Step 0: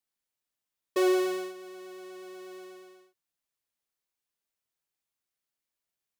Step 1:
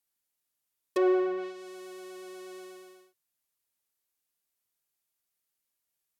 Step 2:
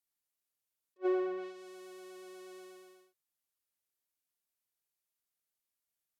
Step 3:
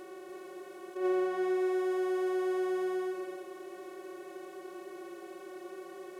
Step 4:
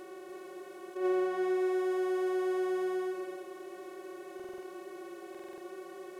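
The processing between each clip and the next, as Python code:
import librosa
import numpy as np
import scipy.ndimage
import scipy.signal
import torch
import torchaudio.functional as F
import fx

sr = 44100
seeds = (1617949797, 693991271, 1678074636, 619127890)

y1 = fx.env_lowpass_down(x, sr, base_hz=1500.0, full_db=-26.0)
y1 = fx.high_shelf(y1, sr, hz=8800.0, db=11.5)
y2 = fx.attack_slew(y1, sr, db_per_s=540.0)
y2 = F.gain(torch.from_numpy(y2), -6.0).numpy()
y3 = fx.bin_compress(y2, sr, power=0.2)
y3 = y3 + 10.0 ** (-5.0 / 20.0) * np.pad(y3, (int(294 * sr / 1000.0), 0))[:len(y3)]
y4 = fx.buffer_glitch(y3, sr, at_s=(4.35, 5.3), block=2048, repeats=5)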